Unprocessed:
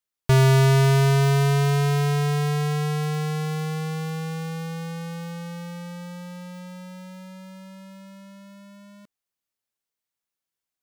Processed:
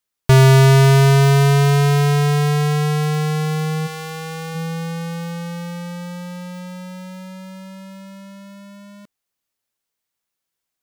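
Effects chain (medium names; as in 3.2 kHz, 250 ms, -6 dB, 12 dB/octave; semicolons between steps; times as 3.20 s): 3.86–4.54 s: high-pass 720 Hz -> 270 Hz 6 dB/octave; trim +6.5 dB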